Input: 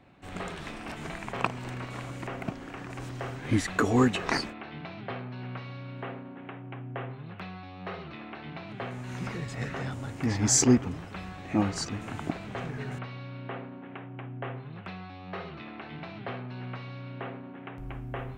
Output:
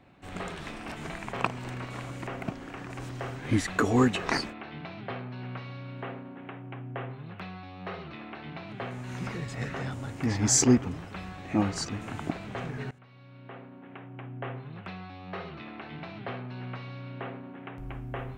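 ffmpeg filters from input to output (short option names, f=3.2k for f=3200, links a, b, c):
-filter_complex "[0:a]asplit=2[a][b];[a]atrim=end=12.91,asetpts=PTS-STARTPTS,afade=t=out:st=12.906:d=0.004:c=hsin:silence=0.0794328[c];[b]atrim=start=12.91,asetpts=PTS-STARTPTS,afade=t=in:d=1.57:silence=0.0794328[d];[c][d]concat=n=2:v=0:a=1"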